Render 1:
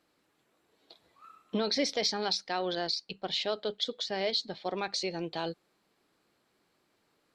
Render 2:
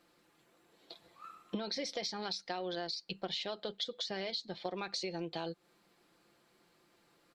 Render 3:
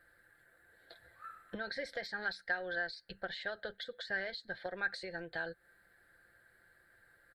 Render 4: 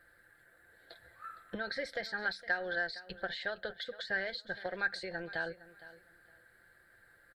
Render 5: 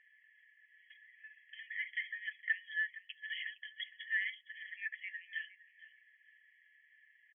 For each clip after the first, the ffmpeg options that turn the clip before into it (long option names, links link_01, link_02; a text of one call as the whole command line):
ffmpeg -i in.wav -af "aecho=1:1:5.8:0.43,acompressor=threshold=-38dB:ratio=10,volume=3dB" out.wav
ffmpeg -i in.wav -af "firequalizer=gain_entry='entry(100,0);entry(150,-18);entry(330,-20);entry(540,-11);entry(1100,-21);entry(1600,6);entry(2500,-22);entry(4100,-17);entry(6000,-29);entry(8600,-10)':delay=0.05:min_phase=1,volume=11dB" out.wav
ffmpeg -i in.wav -af "aecho=1:1:462|924:0.141|0.0311,volume=2.5dB" out.wav
ffmpeg -i in.wav -af "aresample=8000,aresample=44100,afftfilt=real='re*eq(mod(floor(b*sr/1024/1700),2),1)':imag='im*eq(mod(floor(b*sr/1024/1700),2),1)':win_size=1024:overlap=0.75,volume=4.5dB" out.wav